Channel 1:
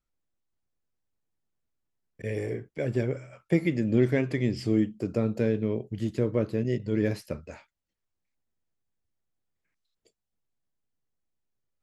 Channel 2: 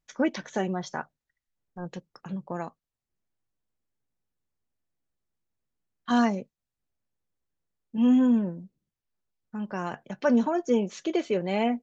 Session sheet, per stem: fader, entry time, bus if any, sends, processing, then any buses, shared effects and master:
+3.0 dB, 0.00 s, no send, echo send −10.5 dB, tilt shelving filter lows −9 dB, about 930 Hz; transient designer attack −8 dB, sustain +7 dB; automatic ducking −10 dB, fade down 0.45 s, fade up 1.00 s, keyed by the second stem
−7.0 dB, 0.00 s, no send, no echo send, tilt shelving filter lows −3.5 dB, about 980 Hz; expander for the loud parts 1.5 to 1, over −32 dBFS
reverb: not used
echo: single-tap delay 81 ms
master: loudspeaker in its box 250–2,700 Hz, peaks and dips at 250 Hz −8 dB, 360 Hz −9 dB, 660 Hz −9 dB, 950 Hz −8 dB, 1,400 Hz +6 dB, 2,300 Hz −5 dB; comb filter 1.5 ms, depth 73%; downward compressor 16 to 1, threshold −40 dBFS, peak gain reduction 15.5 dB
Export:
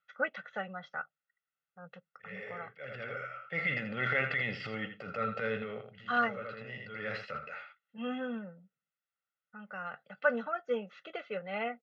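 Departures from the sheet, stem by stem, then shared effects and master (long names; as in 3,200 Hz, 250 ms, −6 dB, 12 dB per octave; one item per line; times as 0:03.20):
stem 2 −7.0 dB → −0.5 dB
master: missing downward compressor 16 to 1, threshold −40 dBFS, peak gain reduction 15.5 dB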